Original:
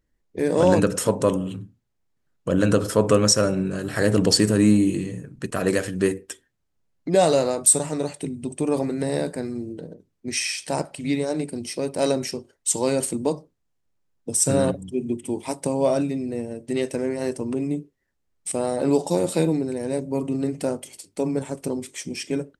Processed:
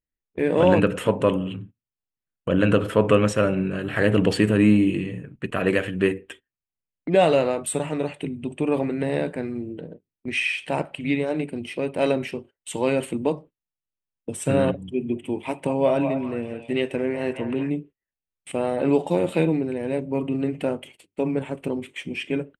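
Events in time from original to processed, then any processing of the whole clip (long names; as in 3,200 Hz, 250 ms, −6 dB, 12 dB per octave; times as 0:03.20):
0:14.85–0:17.70: echo through a band-pass that steps 198 ms, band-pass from 840 Hz, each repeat 0.7 octaves, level −4.5 dB
whole clip: noise gate −41 dBFS, range −19 dB; high shelf with overshoot 3,900 Hz −11.5 dB, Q 3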